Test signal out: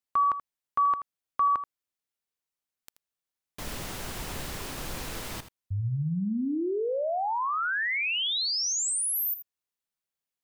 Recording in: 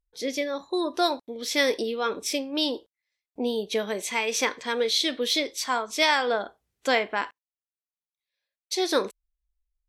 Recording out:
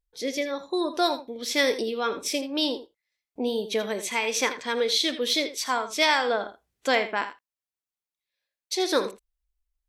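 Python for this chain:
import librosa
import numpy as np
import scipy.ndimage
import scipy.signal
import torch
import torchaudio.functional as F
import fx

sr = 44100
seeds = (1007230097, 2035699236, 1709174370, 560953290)

y = x + 10.0 ** (-12.5 / 20.0) * np.pad(x, (int(81 * sr / 1000.0), 0))[:len(x)]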